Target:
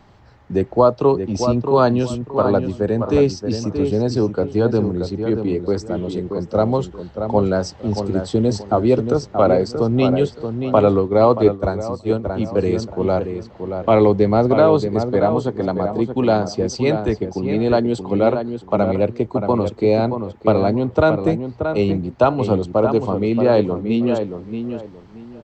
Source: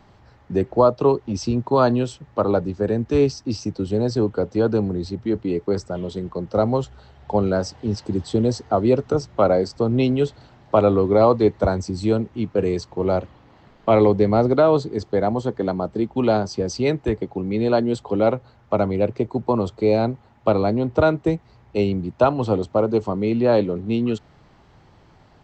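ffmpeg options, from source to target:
-filter_complex "[0:a]asplit=2[a][b];[b]adelay=628,lowpass=f=2.3k:p=1,volume=-7dB,asplit=2[c][d];[d]adelay=628,lowpass=f=2.3k:p=1,volume=0.25,asplit=2[e][f];[f]adelay=628,lowpass=f=2.3k:p=1,volume=0.25[g];[a][c][e][g]amix=inputs=4:normalize=0,asplit=3[h][i][j];[h]afade=t=out:st=10.99:d=0.02[k];[i]agate=range=-33dB:threshold=-13dB:ratio=3:detection=peak,afade=t=in:st=10.99:d=0.02,afade=t=out:st=12.23:d=0.02[l];[j]afade=t=in:st=12.23:d=0.02[m];[k][l][m]amix=inputs=3:normalize=0,volume=2dB"

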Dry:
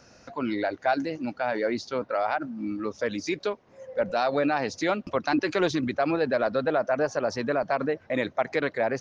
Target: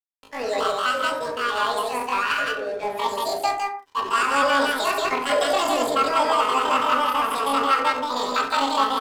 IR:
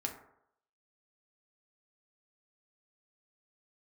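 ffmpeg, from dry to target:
-filter_complex "[0:a]aecho=1:1:69.97|172:0.355|0.891,aeval=exprs='sgn(val(0))*max(abs(val(0))-0.0133,0)':c=same,asetrate=85689,aresample=44100,atempo=0.514651[a];[1:a]atrim=start_sample=2205,afade=t=out:st=0.22:d=0.01,atrim=end_sample=10143[b];[a][b]afir=irnorm=-1:irlink=0,volume=2.5dB"

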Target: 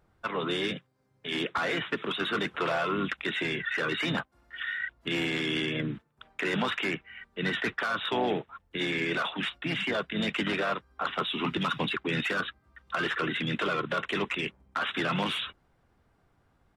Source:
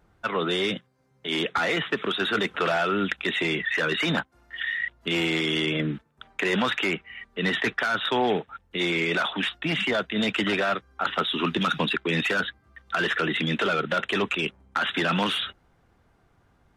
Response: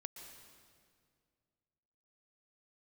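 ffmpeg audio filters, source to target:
-filter_complex "[0:a]asplit=2[a][b];[b]asetrate=35002,aresample=44100,atempo=1.25992,volume=-7dB[c];[a][c]amix=inputs=2:normalize=0,bandreject=f=6.4k:w=22,volume=-5.5dB"

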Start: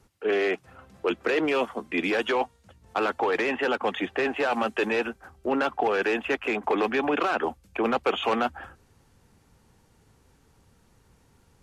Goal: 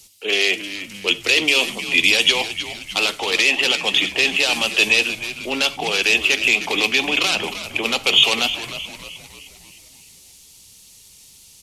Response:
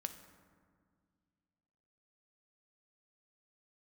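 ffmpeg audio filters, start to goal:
-filter_complex "[0:a]asplit=7[a][b][c][d][e][f][g];[b]adelay=309,afreqshift=-100,volume=-11.5dB[h];[c]adelay=618,afreqshift=-200,volume=-17.2dB[i];[d]adelay=927,afreqshift=-300,volume=-22.9dB[j];[e]adelay=1236,afreqshift=-400,volume=-28.5dB[k];[f]adelay=1545,afreqshift=-500,volume=-34.2dB[l];[g]adelay=1854,afreqshift=-600,volume=-39.9dB[m];[a][h][i][j][k][l][m]amix=inputs=7:normalize=0,aexciter=amount=11.2:drive=7.4:freq=2.4k,asplit=2[n][o];[1:a]atrim=start_sample=2205,atrim=end_sample=4410[p];[o][p]afir=irnorm=-1:irlink=0,volume=7dB[q];[n][q]amix=inputs=2:normalize=0,volume=-10dB"

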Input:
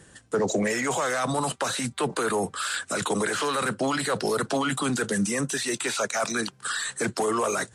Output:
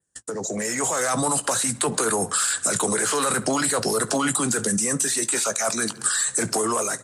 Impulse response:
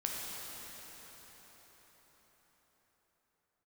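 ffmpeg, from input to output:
-filter_complex "[0:a]highshelf=f=4.6k:t=q:w=1.5:g=9,asplit=2[a][b];[b]adelay=73,lowpass=f=4.8k:p=1,volume=-22dB,asplit=2[c][d];[d]adelay=73,lowpass=f=4.8k:p=1,volume=0.53,asplit=2[e][f];[f]adelay=73,lowpass=f=4.8k:p=1,volume=0.53,asplit=2[g][h];[h]adelay=73,lowpass=f=4.8k:p=1,volume=0.53[i];[c][e][g][i]amix=inputs=4:normalize=0[j];[a][j]amix=inputs=2:normalize=0,acompressor=threshold=-33dB:ratio=10,adynamicequalizer=threshold=0.00251:dfrequency=5800:dqfactor=2.5:tfrequency=5800:tqfactor=2.5:attack=5:release=100:ratio=0.375:range=3:mode=cutabove:tftype=bell,dynaudnorm=f=300:g=5:m=13.5dB,agate=range=-35dB:threshold=-40dB:ratio=16:detection=peak,asplit=2[k][l];[l]alimiter=level_in=3.5dB:limit=-24dB:level=0:latency=1:release=208,volume=-3.5dB,volume=1.5dB[m];[k][m]amix=inputs=2:normalize=0,atempo=1.1,asplit=2[n][o];[o]adelay=18,volume=-13dB[p];[n][p]amix=inputs=2:normalize=0,volume=-2dB"

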